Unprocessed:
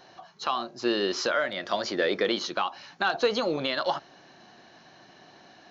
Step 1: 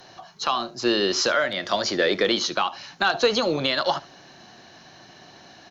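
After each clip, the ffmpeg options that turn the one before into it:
-filter_complex "[0:a]acrossover=split=130|1200[a][b][c];[a]acontrast=81[d];[d][b][c]amix=inputs=3:normalize=0,aemphasis=mode=production:type=cd,aecho=1:1:74:0.0944,volume=4dB"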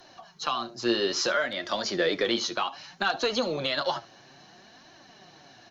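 -af "flanger=delay=2.8:depth=6.5:regen=35:speed=0.61:shape=triangular,volume=-1dB"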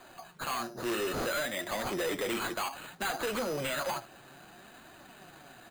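-af "acrusher=samples=8:mix=1:aa=0.000001,asoftclip=type=tanh:threshold=-29dB"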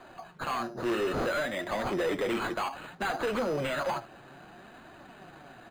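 -af "lowpass=f=1.9k:p=1,volume=4dB"

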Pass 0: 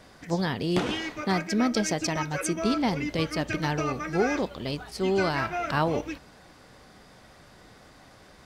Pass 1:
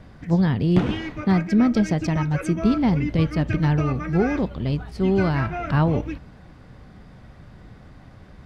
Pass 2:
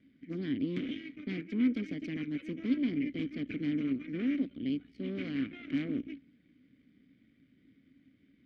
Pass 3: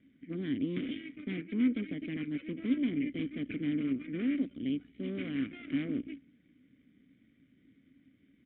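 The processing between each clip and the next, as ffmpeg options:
-af "bass=f=250:g=14,treble=f=4k:g=-11"
-filter_complex "[0:a]aeval=exprs='0.531*(cos(1*acos(clip(val(0)/0.531,-1,1)))-cos(1*PI/2))+0.15*(cos(8*acos(clip(val(0)/0.531,-1,1)))-cos(8*PI/2))':c=same,asplit=3[a][b][c];[a]bandpass=f=270:t=q:w=8,volume=0dB[d];[b]bandpass=f=2.29k:t=q:w=8,volume=-6dB[e];[c]bandpass=f=3.01k:t=q:w=8,volume=-9dB[f];[d][e][f]amix=inputs=3:normalize=0,volume=-5dB"
-af "aresample=8000,aresample=44100"

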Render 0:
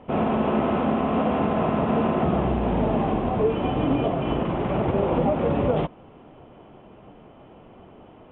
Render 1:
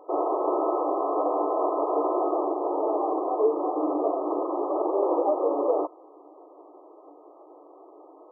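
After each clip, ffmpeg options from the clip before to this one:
-af "afftfilt=real='re*between(b*sr/4096,290,1300)':imag='im*between(b*sr/4096,290,1300)':win_size=4096:overlap=0.75"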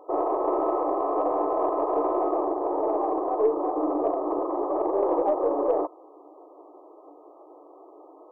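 -af "aeval=exprs='0.251*(cos(1*acos(clip(val(0)/0.251,-1,1)))-cos(1*PI/2))+0.00447*(cos(4*acos(clip(val(0)/0.251,-1,1)))-cos(4*PI/2))+0.00316*(cos(5*acos(clip(val(0)/0.251,-1,1)))-cos(5*PI/2))':c=same"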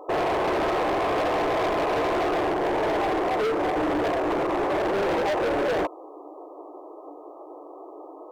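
-af "asoftclip=type=hard:threshold=-29.5dB,volume=7dB"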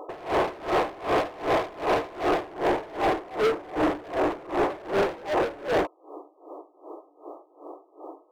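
-af "aeval=exprs='val(0)*pow(10,-23*(0.5-0.5*cos(2*PI*2.6*n/s))/20)':c=same,volume=3.5dB"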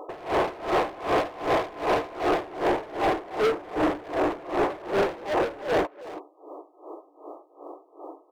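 -filter_complex "[0:a]asplit=2[a][b];[b]adelay=330,highpass=300,lowpass=3.4k,asoftclip=type=hard:threshold=-28dB,volume=-9dB[c];[a][c]amix=inputs=2:normalize=0"

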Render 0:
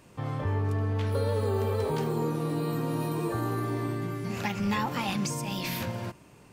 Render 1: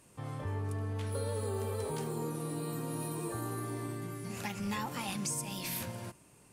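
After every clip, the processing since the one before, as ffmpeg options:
-af "equalizer=f=9.8k:t=o:w=0.94:g=14.5,volume=-8dB"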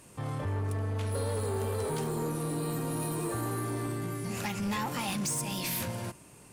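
-af "asoftclip=type=tanh:threshold=-34dB,volume=7dB"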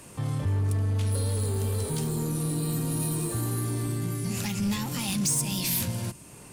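-filter_complex "[0:a]acrossover=split=270|3000[a][b][c];[b]acompressor=threshold=-56dB:ratio=2[d];[a][d][c]amix=inputs=3:normalize=0,volume=7dB"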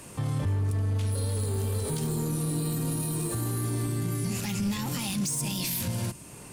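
-af "alimiter=limit=-23.5dB:level=0:latency=1:release=43,volume=2dB"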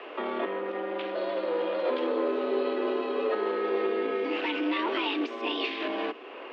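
-af "highpass=f=260:t=q:w=0.5412,highpass=f=260:t=q:w=1.307,lowpass=f=3.1k:t=q:w=0.5176,lowpass=f=3.1k:t=q:w=0.7071,lowpass=f=3.1k:t=q:w=1.932,afreqshift=98,volume=8.5dB"

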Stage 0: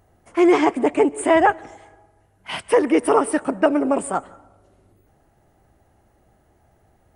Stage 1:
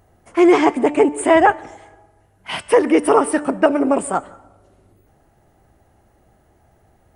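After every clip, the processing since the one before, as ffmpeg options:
-af "bandreject=f=295.7:t=h:w=4,bandreject=f=591.4:t=h:w=4,bandreject=f=887.1:t=h:w=4,bandreject=f=1.1828k:t=h:w=4,bandreject=f=1.4785k:t=h:w=4,bandreject=f=1.7742k:t=h:w=4,bandreject=f=2.0699k:t=h:w=4,bandreject=f=2.3656k:t=h:w=4,bandreject=f=2.6613k:t=h:w=4,bandreject=f=2.957k:t=h:w=4,bandreject=f=3.2527k:t=h:w=4,bandreject=f=3.5484k:t=h:w=4,bandreject=f=3.8441k:t=h:w=4,bandreject=f=4.1398k:t=h:w=4,bandreject=f=4.4355k:t=h:w=4,bandreject=f=4.7312k:t=h:w=4,bandreject=f=5.0269k:t=h:w=4,bandreject=f=5.3226k:t=h:w=4,bandreject=f=5.6183k:t=h:w=4,bandreject=f=5.914k:t=h:w=4,bandreject=f=6.2097k:t=h:w=4,bandreject=f=6.5054k:t=h:w=4,bandreject=f=6.8011k:t=h:w=4,bandreject=f=7.0968k:t=h:w=4,bandreject=f=7.3925k:t=h:w=4,bandreject=f=7.6882k:t=h:w=4,bandreject=f=7.9839k:t=h:w=4,bandreject=f=8.2796k:t=h:w=4,volume=3dB"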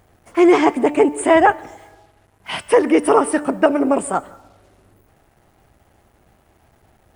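-af "acrusher=bits=8:mix=0:aa=0.5"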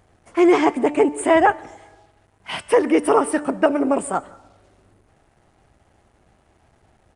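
-af "aresample=22050,aresample=44100,volume=-2.5dB"

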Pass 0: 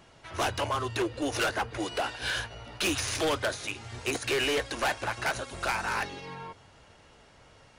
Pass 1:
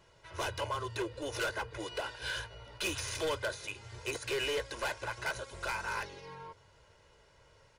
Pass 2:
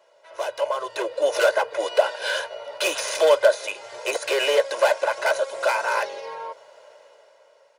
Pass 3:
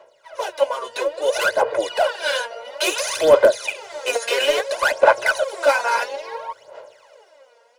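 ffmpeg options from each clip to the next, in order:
-af "aecho=1:1:2:0.6,volume=-8dB"
-af "dynaudnorm=f=160:g=11:m=10dB,highpass=f=590:t=q:w=4.9"
-af "apsyclip=13dB,aphaser=in_gain=1:out_gain=1:delay=4.3:decay=0.75:speed=0.59:type=sinusoidal,volume=-13dB"

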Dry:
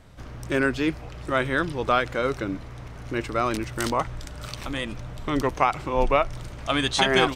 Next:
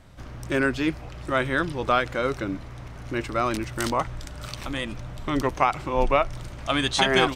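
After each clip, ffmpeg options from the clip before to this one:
-af "bandreject=f=450:w=12"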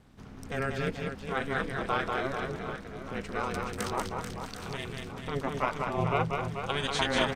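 -af "aeval=exprs='val(0)*sin(2*PI*140*n/s)':c=same,aecho=1:1:190|437|758.1|1176|1718:0.631|0.398|0.251|0.158|0.1,volume=-5.5dB"

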